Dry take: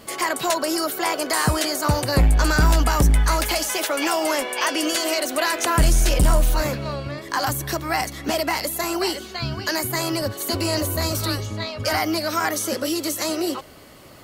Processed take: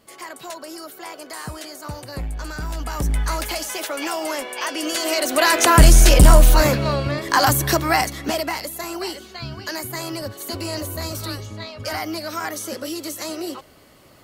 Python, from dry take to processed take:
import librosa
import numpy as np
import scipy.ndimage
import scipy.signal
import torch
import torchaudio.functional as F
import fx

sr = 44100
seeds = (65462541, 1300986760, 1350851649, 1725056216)

y = fx.gain(x, sr, db=fx.line((2.68, -12.5), (3.17, -4.0), (4.75, -4.0), (5.56, 7.0), (7.79, 7.0), (8.7, -5.0)))